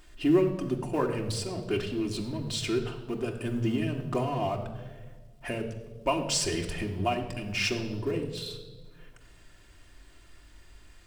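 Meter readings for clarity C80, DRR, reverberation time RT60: 11.0 dB, 1.5 dB, 1.4 s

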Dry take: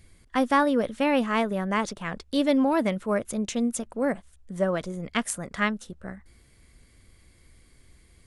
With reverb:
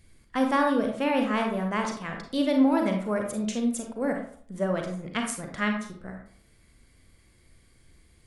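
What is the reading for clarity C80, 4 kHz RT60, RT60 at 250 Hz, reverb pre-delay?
9.0 dB, 0.35 s, 0.50 s, 34 ms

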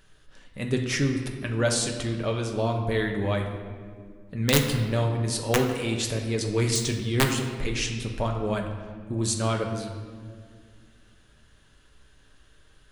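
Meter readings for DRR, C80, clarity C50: 2.0 dB, 7.5 dB, 6.0 dB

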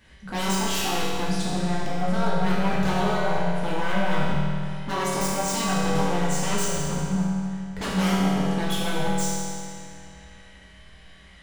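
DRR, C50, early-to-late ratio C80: -8.5 dB, -3.0 dB, -1.0 dB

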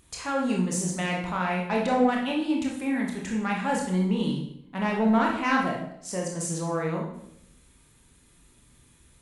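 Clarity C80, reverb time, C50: 7.5 dB, 0.75 s, 4.0 dB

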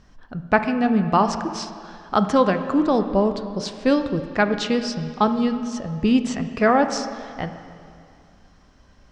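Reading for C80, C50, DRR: 10.0 dB, 9.5 dB, 8.5 dB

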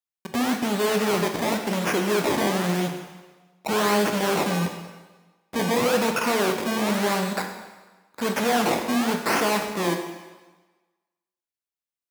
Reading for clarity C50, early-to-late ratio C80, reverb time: 6.0 dB, 8.0 dB, 1.3 s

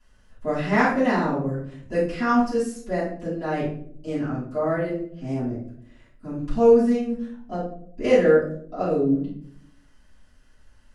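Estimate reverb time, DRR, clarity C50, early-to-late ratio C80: no single decay rate, -13.0 dB, 3.0 dB, 8.0 dB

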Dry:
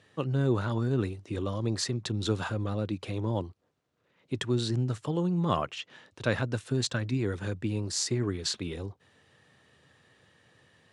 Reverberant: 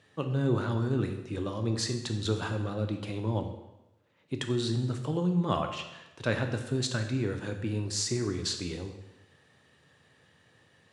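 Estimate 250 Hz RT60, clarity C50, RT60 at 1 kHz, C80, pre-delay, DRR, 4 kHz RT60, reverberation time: 1.0 s, 8.0 dB, 0.95 s, 10.0 dB, 7 ms, 5.5 dB, 0.90 s, 1.0 s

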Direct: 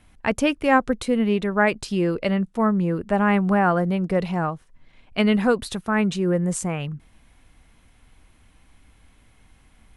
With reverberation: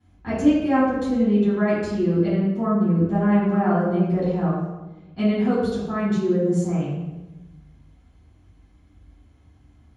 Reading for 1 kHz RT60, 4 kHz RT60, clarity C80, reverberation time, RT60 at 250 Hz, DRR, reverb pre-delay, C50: 1.0 s, 0.80 s, 2.0 dB, 1.1 s, 1.4 s, -13.0 dB, 3 ms, -1.0 dB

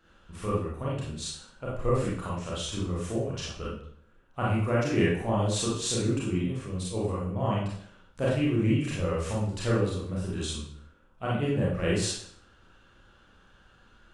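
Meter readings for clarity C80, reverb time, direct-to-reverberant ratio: 5.0 dB, 0.65 s, -7.0 dB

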